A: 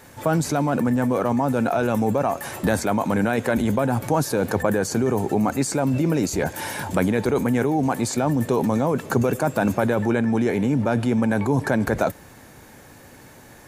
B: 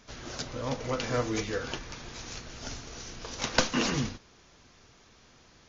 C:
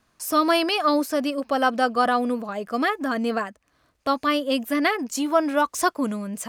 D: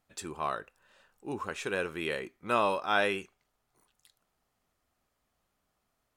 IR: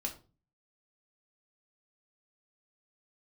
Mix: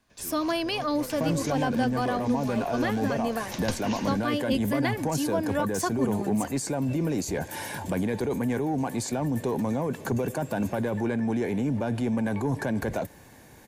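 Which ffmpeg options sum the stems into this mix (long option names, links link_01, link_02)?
-filter_complex "[0:a]asoftclip=type=tanh:threshold=-12dB,adelay=950,volume=-5dB[link_01];[1:a]adelay=100,volume=-6dB[link_02];[2:a]volume=-3.5dB[link_03];[3:a]acompressor=threshold=-29dB:ratio=6,aeval=exprs='0.0398*(abs(mod(val(0)/0.0398+3,4)-2)-1)':channel_layout=same,volume=-4.5dB[link_04];[link_01][link_02][link_03][link_04]amix=inputs=4:normalize=0,acrossover=split=330[link_05][link_06];[link_06]acompressor=threshold=-28dB:ratio=2[link_07];[link_05][link_07]amix=inputs=2:normalize=0,bandreject=frequency=1300:width=6.4"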